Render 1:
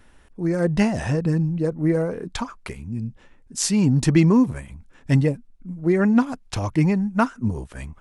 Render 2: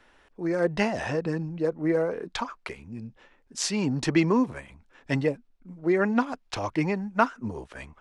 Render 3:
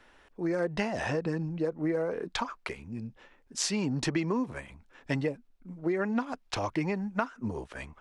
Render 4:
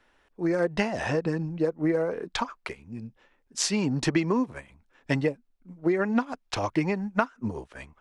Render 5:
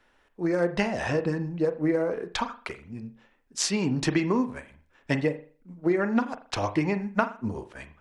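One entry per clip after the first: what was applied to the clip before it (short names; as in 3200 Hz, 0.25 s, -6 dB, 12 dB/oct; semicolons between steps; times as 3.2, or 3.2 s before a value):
three-band isolator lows -13 dB, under 320 Hz, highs -14 dB, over 5900 Hz
compressor 6:1, threshold -26 dBFS, peak gain reduction 11.5 dB
upward expander 1.5:1, over -48 dBFS; gain +6 dB
reverb, pre-delay 40 ms, DRR 10.5 dB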